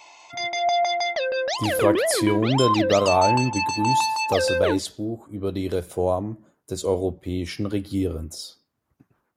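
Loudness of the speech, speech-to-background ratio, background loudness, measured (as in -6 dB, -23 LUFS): -25.0 LUFS, -1.5 dB, -23.5 LUFS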